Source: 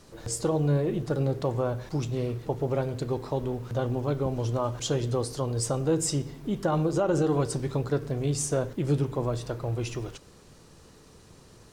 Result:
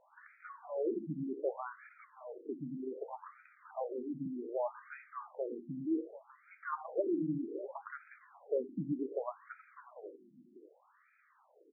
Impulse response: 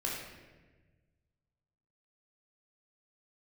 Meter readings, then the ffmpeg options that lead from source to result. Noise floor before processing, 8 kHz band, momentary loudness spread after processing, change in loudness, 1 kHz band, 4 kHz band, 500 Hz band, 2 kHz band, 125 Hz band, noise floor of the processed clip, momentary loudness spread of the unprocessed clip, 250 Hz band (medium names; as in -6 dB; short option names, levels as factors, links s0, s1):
-54 dBFS, under -40 dB, 19 LU, -11.0 dB, -9.5 dB, under -40 dB, -10.5 dB, -8.0 dB, -23.5 dB, -69 dBFS, 6 LU, -9.5 dB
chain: -filter_complex "[0:a]aemphasis=mode=production:type=75kf,aecho=1:1:592:0.158,asplit=2[s0][s1];[1:a]atrim=start_sample=2205,adelay=138[s2];[s1][s2]afir=irnorm=-1:irlink=0,volume=0.0531[s3];[s0][s3]amix=inputs=2:normalize=0,afftfilt=real='re*between(b*sr/1024,230*pow(1800/230,0.5+0.5*sin(2*PI*0.65*pts/sr))/1.41,230*pow(1800/230,0.5+0.5*sin(2*PI*0.65*pts/sr))*1.41)':imag='im*between(b*sr/1024,230*pow(1800/230,0.5+0.5*sin(2*PI*0.65*pts/sr))/1.41,230*pow(1800/230,0.5+0.5*sin(2*PI*0.65*pts/sr))*1.41)':win_size=1024:overlap=0.75,volume=0.596"